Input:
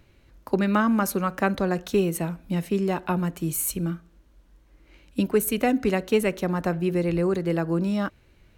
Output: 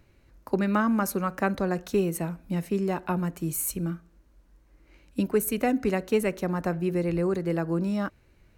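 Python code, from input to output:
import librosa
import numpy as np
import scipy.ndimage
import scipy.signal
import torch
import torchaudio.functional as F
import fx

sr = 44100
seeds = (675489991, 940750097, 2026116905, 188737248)

y = fx.peak_eq(x, sr, hz=3300.0, db=-5.5, octaves=0.56)
y = F.gain(torch.from_numpy(y), -2.5).numpy()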